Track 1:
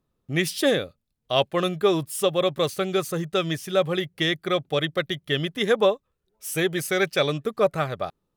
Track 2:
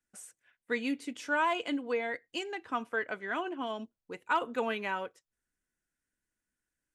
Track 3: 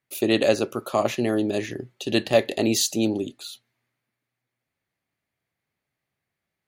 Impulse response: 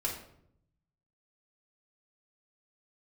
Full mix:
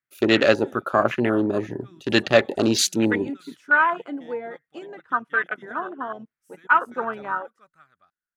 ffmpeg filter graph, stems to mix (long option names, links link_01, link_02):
-filter_complex "[0:a]equalizer=frequency=125:width_type=o:width=1:gain=-6,equalizer=frequency=250:width_type=o:width=1:gain=5,equalizer=frequency=500:width_type=o:width=1:gain=-11,equalizer=frequency=8000:width_type=o:width=1:gain=7,volume=-19.5dB[link_01];[1:a]adelay=2400,volume=1dB[link_02];[2:a]equalizer=frequency=910:width_type=o:width=1.1:gain=-5.5,volume=2dB[link_03];[link_01][link_02][link_03]amix=inputs=3:normalize=0,afwtdn=0.0282,equalizer=frequency=1400:width_type=o:width=1:gain=14.5"